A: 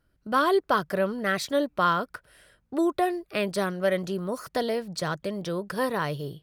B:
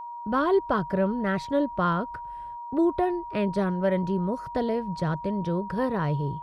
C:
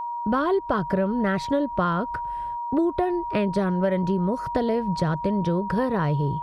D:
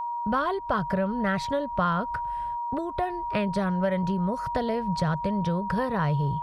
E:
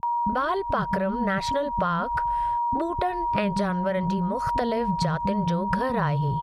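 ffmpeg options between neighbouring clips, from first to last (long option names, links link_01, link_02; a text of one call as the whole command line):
ffmpeg -i in.wav -af "agate=range=-29dB:threshold=-57dB:ratio=16:detection=peak,aemphasis=mode=reproduction:type=riaa,aeval=exprs='val(0)+0.0251*sin(2*PI*950*n/s)':channel_layout=same,volume=-3dB" out.wav
ffmpeg -i in.wav -af "acompressor=threshold=-27dB:ratio=6,volume=7.5dB" out.wav
ffmpeg -i in.wav -af "equalizer=frequency=330:width_type=o:width=0.82:gain=-11.5" out.wav
ffmpeg -i in.wav -filter_complex "[0:a]acompressor=threshold=-27dB:ratio=6,acrossover=split=260[link_01][link_02];[link_02]adelay=30[link_03];[link_01][link_03]amix=inputs=2:normalize=0,volume=6.5dB" out.wav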